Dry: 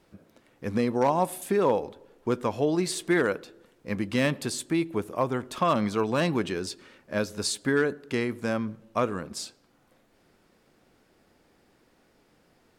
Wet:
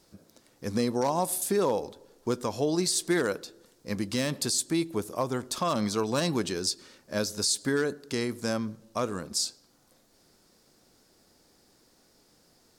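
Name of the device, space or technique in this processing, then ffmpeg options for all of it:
over-bright horn tweeter: -af "highshelf=f=3.6k:t=q:w=1.5:g=9.5,alimiter=limit=-14.5dB:level=0:latency=1:release=96,volume=-1.5dB"

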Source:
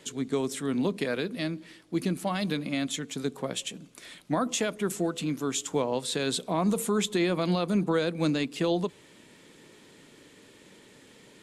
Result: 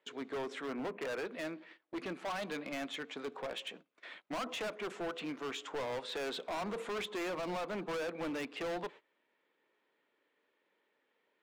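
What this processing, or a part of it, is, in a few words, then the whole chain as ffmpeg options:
walkie-talkie: -filter_complex "[0:a]asettb=1/sr,asplit=3[a][b][c];[a]atrim=end=0.704[d];[b]atrim=start=0.7:end=1.25,asetpts=PTS-STARTPTS,afade=t=in:d=0.004:c=qsin,afade=t=out:st=0.546:d=0.004:c=qsin,lowpass=f=2.5k:w=0.5412,lowpass=f=2.5k:w=1.3066[e];[c]atrim=start=1.246[f];[d][e]acrossfade=d=0.004:c1=hsin:c2=qsin[g];[g][f]acrossfade=d=0.004:c1=qsin:c2=hsin,highpass=580,lowpass=2.3k,highshelf=f=3.7k:g=-4,asoftclip=type=hard:threshold=-38dB,agate=range=-20dB:threshold=-54dB:ratio=16:detection=peak,volume=2.5dB"

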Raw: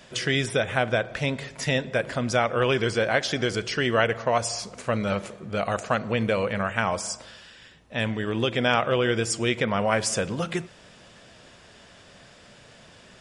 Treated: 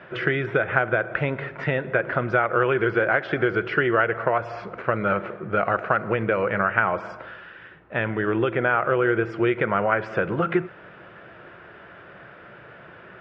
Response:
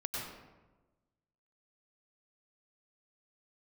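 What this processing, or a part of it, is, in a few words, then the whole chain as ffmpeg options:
bass amplifier: -filter_complex "[0:a]acompressor=threshold=-25dB:ratio=4,highpass=83,equalizer=f=92:t=q:w=4:g=-4,equalizer=f=240:t=q:w=4:g=-9,equalizer=f=350:t=q:w=4:g=7,equalizer=f=1.4k:t=q:w=4:g=9,lowpass=f=2.3k:w=0.5412,lowpass=f=2.3k:w=1.3066,asettb=1/sr,asplit=3[a][b][c];[a]atrim=end=8.494[d];[b]atrim=start=8.49:end=9.29,asetpts=PTS-STARTPTS,afade=t=in:d=0.004:c=qsin,afade=t=out:st=0.796:d=0.004:c=qsin,acrossover=split=2900[e][f];[f]acompressor=threshold=-56dB:ratio=4:attack=1:release=60[g];[e][g]amix=inputs=2:normalize=0[h];[c]atrim=start=9.286[i];[d][h]acrossfade=d=0.004:c1=hsin:c2=qsin[j];[j][i]acrossfade=d=0.004:c1=qsin:c2=hsin,volume=5.5dB"

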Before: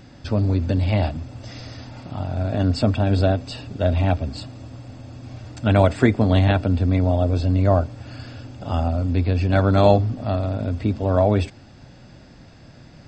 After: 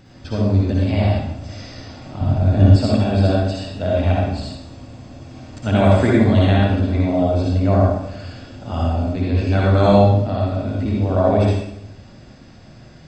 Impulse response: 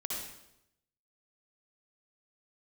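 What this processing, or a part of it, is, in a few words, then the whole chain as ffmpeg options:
bathroom: -filter_complex "[1:a]atrim=start_sample=2205[a];[0:a][a]afir=irnorm=-1:irlink=0,asettb=1/sr,asplit=3[b][c][d];[b]atrim=end=2.214[e];[c]atrim=start=2.21:end=2.76,asetpts=PTS-STARTPTS,afade=t=in:d=0.004:c=qsin,afade=t=out:st=0.546:d=0.004:c=qsin,lowshelf=f=210:g=11.5[f];[d]atrim=start=2.756[g];[e][f]acrossfade=d=0.004:c1=hsin:c2=qsin[h];[h][g]acrossfade=d=0.004:c1=qsin:c2=hsin"

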